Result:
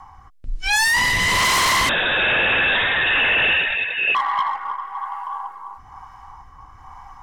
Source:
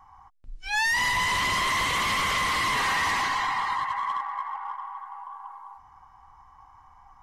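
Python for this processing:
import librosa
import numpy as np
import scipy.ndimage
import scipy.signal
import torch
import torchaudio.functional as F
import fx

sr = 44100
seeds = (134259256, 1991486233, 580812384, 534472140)

y = fx.rotary(x, sr, hz=1.1)
y = fx.fold_sine(y, sr, drive_db=11, ceiling_db=-14.5)
y = fx.freq_invert(y, sr, carrier_hz=3700, at=(1.89, 4.15))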